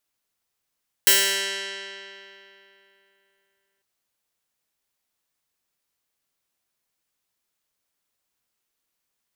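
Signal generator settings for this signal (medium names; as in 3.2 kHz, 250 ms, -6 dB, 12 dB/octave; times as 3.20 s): plucked string G3, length 2.75 s, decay 3.10 s, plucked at 0.16, bright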